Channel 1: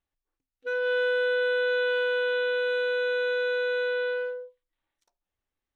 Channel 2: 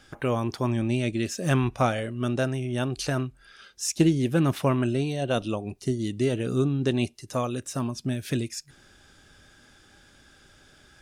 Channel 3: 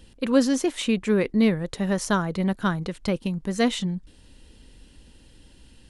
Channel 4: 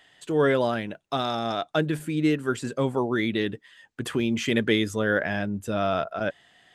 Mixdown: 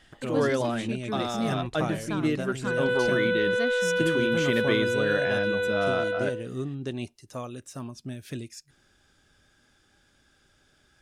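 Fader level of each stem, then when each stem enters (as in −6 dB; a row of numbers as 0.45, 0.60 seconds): 0.0, −8.5, −11.5, −4.0 decibels; 2.00, 0.00, 0.00, 0.00 seconds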